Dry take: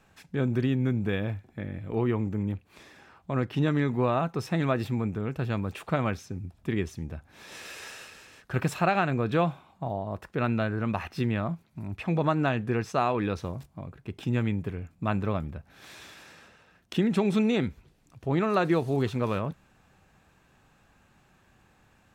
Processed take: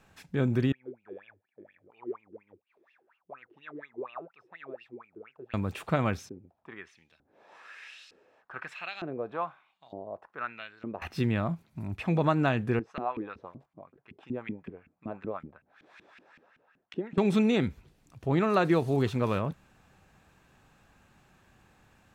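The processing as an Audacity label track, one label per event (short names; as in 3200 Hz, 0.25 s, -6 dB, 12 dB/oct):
0.720000	5.540000	wah 4.2 Hz 340–2900 Hz, Q 13
6.290000	11.020000	LFO band-pass saw up 1.1 Hz 320–4800 Hz
12.790000	17.180000	LFO band-pass saw up 5.3 Hz 220–2500 Hz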